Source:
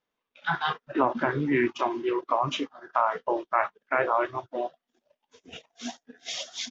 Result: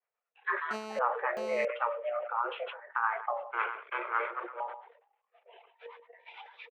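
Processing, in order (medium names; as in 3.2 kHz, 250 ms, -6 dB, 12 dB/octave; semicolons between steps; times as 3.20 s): 3.50–4.60 s: comb filter that takes the minimum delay 0.96 ms; mistuned SSB +230 Hz 180–2400 Hz; 5.86–6.34 s: compression, threshold -42 dBFS, peak gain reduction 10 dB; delay 134 ms -22.5 dB; harmonic tremolo 9 Hz, depth 70%, crossover 530 Hz; 0.71–1.65 s: mobile phone buzz -38 dBFS; decay stretcher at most 86 dB/s; trim -3.5 dB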